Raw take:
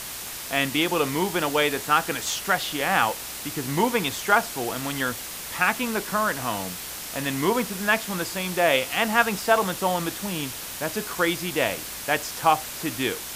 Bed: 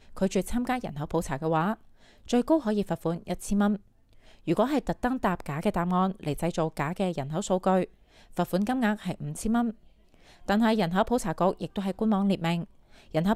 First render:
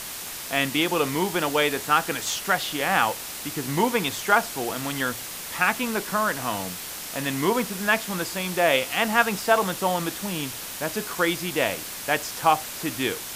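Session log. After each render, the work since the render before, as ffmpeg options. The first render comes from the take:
-af "bandreject=f=60:t=h:w=4,bandreject=f=120:t=h:w=4"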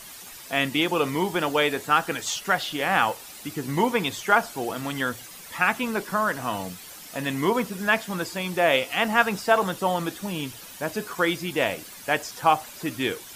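-af "afftdn=nr=11:nf=-36"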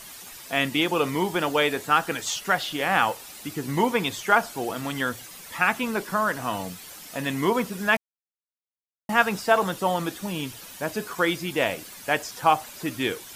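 -filter_complex "[0:a]asplit=3[s0][s1][s2];[s0]atrim=end=7.97,asetpts=PTS-STARTPTS,afade=t=out:st=7.966:d=0.004:c=hsin[s3];[s1]atrim=start=7.97:end=9.09,asetpts=PTS-STARTPTS,volume=0[s4];[s2]atrim=start=9.09,asetpts=PTS-STARTPTS,afade=t=in:d=0.004:c=hsin[s5];[s3][s4][s5]concat=n=3:v=0:a=1"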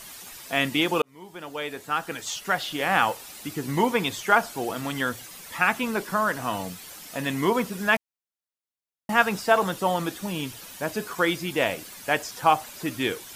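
-filter_complex "[0:a]asplit=2[s0][s1];[s0]atrim=end=1.02,asetpts=PTS-STARTPTS,afade=t=out:st=1.016:d=0.004:c=hsin[s2];[s1]atrim=start=1.02,asetpts=PTS-STARTPTS,afade=t=in:d=1.89[s3];[s2][s3]concat=n=2:v=0:a=1"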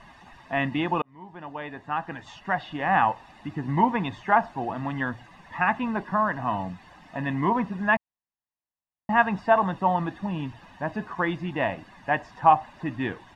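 -af "lowpass=1600,aecho=1:1:1.1:0.64"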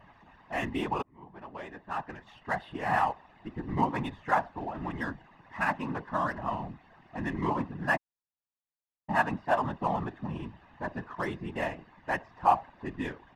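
-af "adynamicsmooth=sensitivity=8:basefreq=2900,afftfilt=real='hypot(re,im)*cos(2*PI*random(0))':imag='hypot(re,im)*sin(2*PI*random(1))':win_size=512:overlap=0.75"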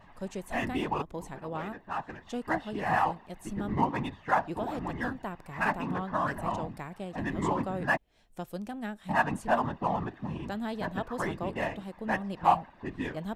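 -filter_complex "[1:a]volume=0.266[s0];[0:a][s0]amix=inputs=2:normalize=0"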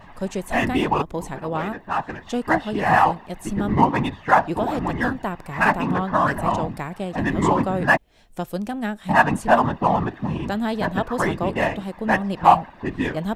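-af "volume=3.35,alimiter=limit=0.891:level=0:latency=1"

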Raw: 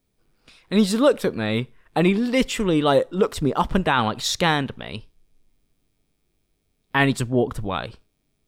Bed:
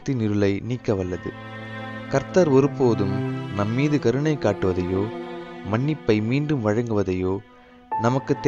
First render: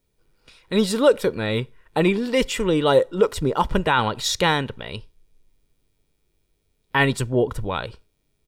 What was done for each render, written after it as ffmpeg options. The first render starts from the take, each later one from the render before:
-af "aecho=1:1:2.1:0.35"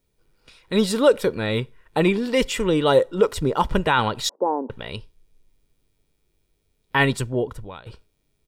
-filter_complex "[0:a]asettb=1/sr,asplit=3[s0][s1][s2];[s0]atrim=end=4.294[s3];[s1]atrim=start=4.29:end=4.7,asetpts=PTS-STARTPTS,afade=t=in:d=0.004:c=qsin,afade=t=out:st=0.406:d=0.004:c=qsin,asuperpass=centerf=480:order=12:qfactor=0.64[s4];[s2]atrim=start=4.696[s5];[s3][s4]acrossfade=d=0.004:c1=hsin:c2=qsin[s6];[s6][s5]acrossfade=d=0.004:c1=qsin:c2=hsin,asplit=2[s7][s8];[s7]atrim=end=7.86,asetpts=PTS-STARTPTS,afade=t=out:st=7.09:d=0.77:silence=0.105925[s9];[s8]atrim=start=7.86,asetpts=PTS-STARTPTS,afade=t=in:d=0.004:c=hsin:silence=0.105925[s10];[s9][s10]concat=n=2:v=0:a=1"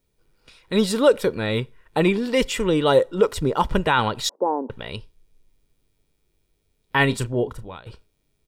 -filter_complex "[0:a]asettb=1/sr,asplit=3[s0][s1][s2];[s0]atrim=end=7.074[s3];[s1]atrim=start=7.07:end=7.78,asetpts=PTS-STARTPTS,afade=t=in:d=0.004:c=qsin,afade=t=out:st=0.706:d=0.004:c=qsin,asplit=2[s4][s5];[s5]adelay=33,volume=0.251[s6];[s4][s6]amix=inputs=2:normalize=0,atrim=end_sample=31311[s7];[s2]atrim=start=7.776[s8];[s3][s7]acrossfade=d=0.004:c1=hsin:c2=qsin[s9];[s9][s8]acrossfade=d=0.004:c1=qsin:c2=hsin"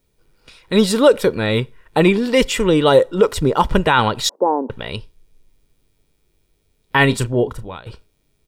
-af "volume=1.88,alimiter=limit=0.794:level=0:latency=1"

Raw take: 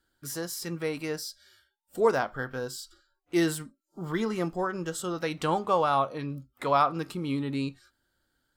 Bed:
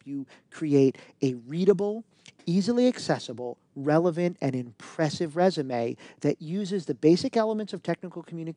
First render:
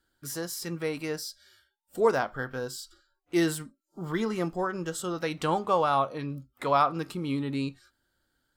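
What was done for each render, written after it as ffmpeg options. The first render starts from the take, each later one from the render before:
-af anull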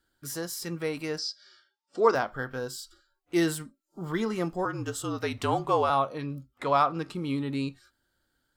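-filter_complex "[0:a]asettb=1/sr,asplit=3[s0][s1][s2];[s0]atrim=end=1.184[s3];[s1]atrim=start=1.18:end=2.15,asetpts=PTS-STARTPTS,afade=t=in:d=0.004:c=qsin,afade=t=out:st=0.966:d=0.004:c=qsin,highpass=220,equalizer=f=330:t=q:w=4:g=4,equalizer=f=1200:t=q:w=4:g=8,equalizer=f=5000:t=q:w=4:g=8,lowpass=f=6400:w=0.5412,lowpass=f=6400:w=1.3066[s4];[s2]atrim=start=2.146[s5];[s3][s4]acrossfade=d=0.004:c1=hsin:c2=qsin[s6];[s6][s5]acrossfade=d=0.004:c1=qsin:c2=hsin,asettb=1/sr,asplit=3[s7][s8][s9];[s7]atrim=end=4.654[s10];[s8]atrim=start=4.65:end=5.9,asetpts=PTS-STARTPTS,afade=t=in:d=0.004:c=qsin,afade=t=out:st=1.246:d=0.004:c=qsin,afreqshift=-50[s11];[s9]atrim=start=5.896[s12];[s10][s11]acrossfade=d=0.004:c1=hsin:c2=qsin[s13];[s13][s12]acrossfade=d=0.004:c1=qsin:c2=hsin,asettb=1/sr,asplit=3[s14][s15][s16];[s14]atrim=end=6.544[s17];[s15]atrim=start=6.54:end=7.15,asetpts=PTS-STARTPTS,afade=t=in:d=0.004:c=qsin,afade=t=out:st=0.606:d=0.004:c=qsin,adynamicsmooth=sensitivity=6.5:basefreq=7600[s18];[s16]atrim=start=7.146[s19];[s17][s18]acrossfade=d=0.004:c1=hsin:c2=qsin[s20];[s20][s19]acrossfade=d=0.004:c1=qsin:c2=hsin"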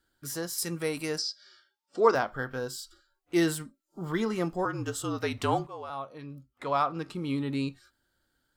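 -filter_complex "[0:a]asettb=1/sr,asplit=3[s0][s1][s2];[s0]atrim=end=0.584[s3];[s1]atrim=start=0.58:end=1.22,asetpts=PTS-STARTPTS,afade=t=in:d=0.004:c=qsin,afade=t=out:st=0.636:d=0.004:c=qsin,equalizer=f=10000:t=o:w=1.2:g=11.5[s4];[s2]atrim=start=1.216[s5];[s3][s4]acrossfade=d=0.004:c1=hsin:c2=qsin[s6];[s6][s5]acrossfade=d=0.004:c1=qsin:c2=hsin,asplit=2[s7][s8];[s7]atrim=end=5.67,asetpts=PTS-STARTPTS,afade=t=out:st=5.666:d=0.004:c=hsin:silence=0.0944061[s9];[s8]atrim=start=5.67,asetpts=PTS-STARTPTS,afade=t=in:d=1.8:silence=0.0944061[s10];[s9][s10]concat=n=2:v=0:a=1"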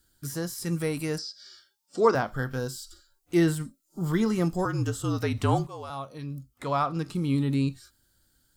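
-filter_complex "[0:a]acrossover=split=2700[s0][s1];[s1]acompressor=threshold=0.00282:ratio=4:attack=1:release=60[s2];[s0][s2]amix=inputs=2:normalize=0,bass=f=250:g=10,treble=f=4000:g=14"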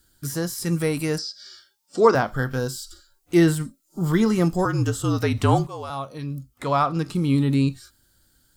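-af "volume=1.88,alimiter=limit=0.708:level=0:latency=1"

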